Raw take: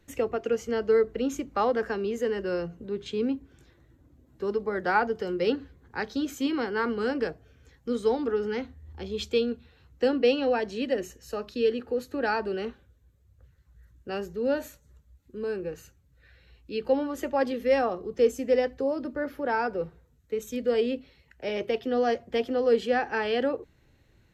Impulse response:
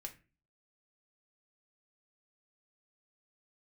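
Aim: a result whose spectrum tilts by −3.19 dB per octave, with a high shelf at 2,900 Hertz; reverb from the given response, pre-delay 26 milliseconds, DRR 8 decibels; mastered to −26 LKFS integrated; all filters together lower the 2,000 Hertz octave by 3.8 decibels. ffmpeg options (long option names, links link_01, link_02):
-filter_complex "[0:a]equalizer=frequency=2000:width_type=o:gain=-9,highshelf=frequency=2900:gain=9,asplit=2[link_01][link_02];[1:a]atrim=start_sample=2205,adelay=26[link_03];[link_02][link_03]afir=irnorm=-1:irlink=0,volume=-4dB[link_04];[link_01][link_04]amix=inputs=2:normalize=0,volume=2dB"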